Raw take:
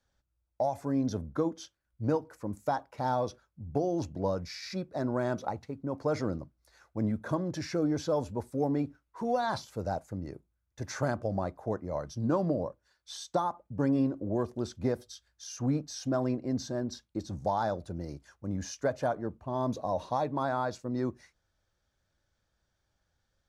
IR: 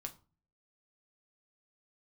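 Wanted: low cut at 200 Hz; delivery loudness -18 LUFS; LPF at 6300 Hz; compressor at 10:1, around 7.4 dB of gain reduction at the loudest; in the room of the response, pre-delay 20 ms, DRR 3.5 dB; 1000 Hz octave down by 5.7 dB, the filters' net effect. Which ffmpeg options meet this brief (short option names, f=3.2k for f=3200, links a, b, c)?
-filter_complex "[0:a]highpass=200,lowpass=6.3k,equalizer=f=1k:t=o:g=-8,acompressor=threshold=-33dB:ratio=10,asplit=2[a][b];[1:a]atrim=start_sample=2205,adelay=20[c];[b][c]afir=irnorm=-1:irlink=0,volume=-0.5dB[d];[a][d]amix=inputs=2:normalize=0,volume=21dB"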